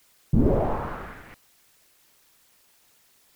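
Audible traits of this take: tremolo triangle 0.61 Hz, depth 75%; a quantiser's noise floor 10-bit, dither triangular; Nellymoser

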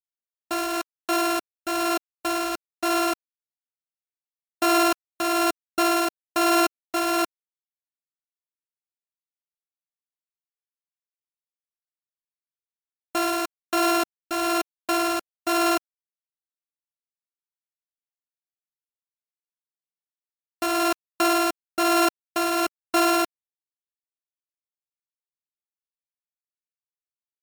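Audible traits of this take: a buzz of ramps at a fixed pitch in blocks of 32 samples; tremolo triangle 1.1 Hz, depth 50%; a quantiser's noise floor 6-bit, dither none; MP3

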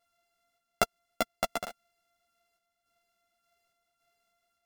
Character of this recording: a buzz of ramps at a fixed pitch in blocks of 64 samples; random-step tremolo; a shimmering, thickened sound

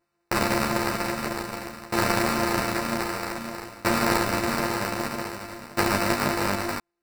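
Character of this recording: a buzz of ramps at a fixed pitch in blocks of 128 samples; tremolo saw down 0.52 Hz, depth 95%; aliases and images of a low sample rate 3.3 kHz, jitter 0%; a shimmering, thickened sound

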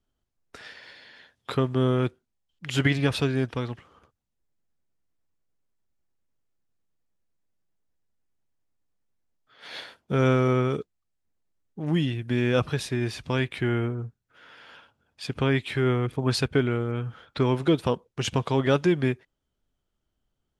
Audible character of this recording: noise floor -80 dBFS; spectral tilt -5.5 dB/octave

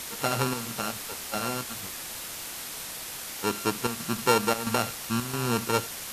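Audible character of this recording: a buzz of ramps at a fixed pitch in blocks of 32 samples; chopped level 1.5 Hz, depth 65%, duty 80%; a quantiser's noise floor 6-bit, dither triangular; MP2

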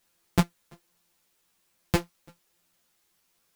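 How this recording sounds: a buzz of ramps at a fixed pitch in blocks of 256 samples; chopped level 1.2 Hz, depth 60%, duty 50%; a quantiser's noise floor 12-bit, dither triangular; a shimmering, thickened sound

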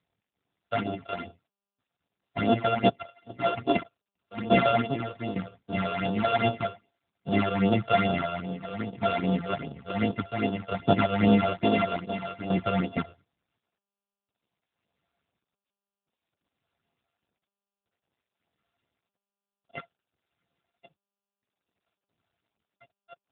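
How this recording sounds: a buzz of ramps at a fixed pitch in blocks of 64 samples; tremolo saw down 0.56 Hz, depth 75%; phasing stages 8, 2.5 Hz, lowest notch 240–2000 Hz; AMR-NB

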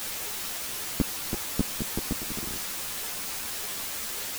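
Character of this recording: tremolo saw up 2.3 Hz, depth 70%; a quantiser's noise floor 6-bit, dither triangular; a shimmering, thickened sound

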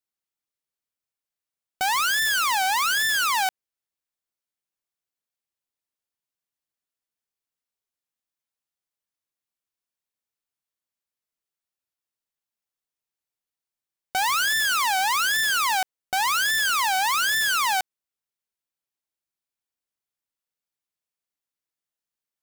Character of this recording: noise floor -91 dBFS; spectral tilt +1.5 dB/octave

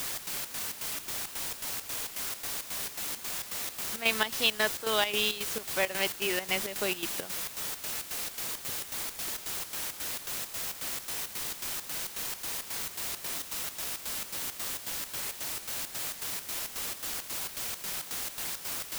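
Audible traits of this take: a quantiser's noise floor 6-bit, dither triangular; chopped level 3.7 Hz, depth 65%, duty 65%

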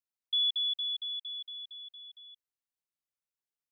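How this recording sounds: noise floor -94 dBFS; spectral tilt +2.0 dB/octave

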